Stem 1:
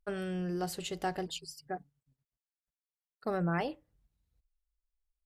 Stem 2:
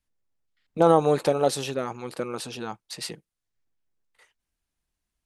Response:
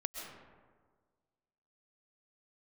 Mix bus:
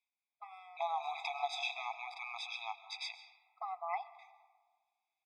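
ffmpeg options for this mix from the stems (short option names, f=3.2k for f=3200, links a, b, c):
-filter_complex "[0:a]lowpass=2.4k,adelay=350,volume=-1dB,asplit=2[a][b];[b]volume=-13.5dB[c];[1:a]firequalizer=gain_entry='entry(890,0);entry(1600,-12);entry(2300,10);entry(11000,-29)':delay=0.05:min_phase=1,acompressor=threshold=-21dB:ratio=6,volume=-7dB,asplit=3[d][e][f];[e]volume=-5dB[g];[f]apad=whole_len=247349[h];[a][h]sidechaincompress=threshold=-53dB:ratio=8:attack=16:release=128[i];[2:a]atrim=start_sample=2205[j];[c][g]amix=inputs=2:normalize=0[k];[k][j]afir=irnorm=-1:irlink=0[l];[i][d][l]amix=inputs=3:normalize=0,afftfilt=real='re*eq(mod(floor(b*sr/1024/660),2),1)':imag='im*eq(mod(floor(b*sr/1024/660),2),1)':win_size=1024:overlap=0.75"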